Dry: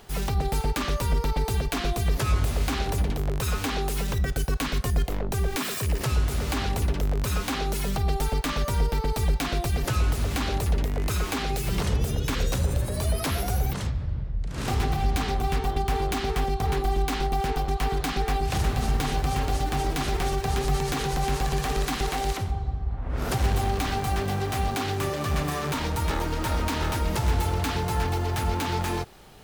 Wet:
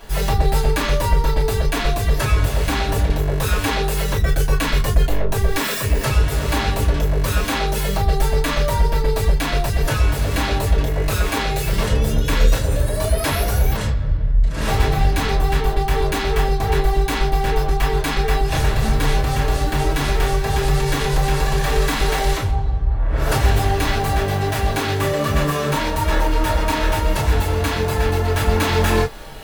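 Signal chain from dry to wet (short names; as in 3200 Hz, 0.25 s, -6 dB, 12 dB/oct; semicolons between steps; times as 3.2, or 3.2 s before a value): reverb, pre-delay 3 ms, DRR -6.5 dB; vocal rider 2 s; bell 1800 Hz +3 dB 0.4 oct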